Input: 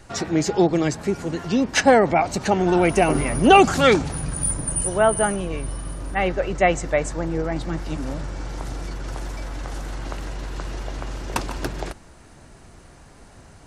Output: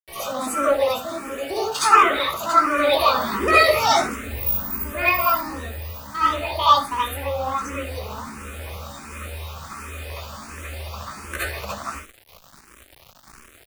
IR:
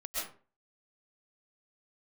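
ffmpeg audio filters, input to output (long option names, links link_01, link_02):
-filter_complex "[0:a]asplit=2[link_01][link_02];[link_02]aecho=0:1:24|72:0.168|0.224[link_03];[link_01][link_03]amix=inputs=2:normalize=0,adynamicequalizer=threshold=0.0141:dfrequency=1100:dqfactor=2.2:tfrequency=1100:tqfactor=2.2:attack=5:release=100:ratio=0.375:range=3:mode=boostabove:tftype=bell,bandreject=frequency=50:width_type=h:width=6,bandreject=frequency=100:width_type=h:width=6,bandreject=frequency=150:width_type=h:width=6,bandreject=frequency=200:width_type=h:width=6,bandreject=frequency=250:width_type=h:width=6,asetrate=72056,aresample=44100,atempo=0.612027,lowshelf=frequency=76:gain=-11.5[link_04];[1:a]atrim=start_sample=2205,asetrate=83790,aresample=44100[link_05];[link_04][link_05]afir=irnorm=-1:irlink=0,asplit=2[link_06][link_07];[link_07]asoftclip=type=hard:threshold=-15.5dB,volume=-4.5dB[link_08];[link_06][link_08]amix=inputs=2:normalize=0,acrusher=bits=6:mix=0:aa=0.000001,asplit=2[link_09][link_10];[link_10]afreqshift=1.4[link_11];[link_09][link_11]amix=inputs=2:normalize=1,volume=1.5dB"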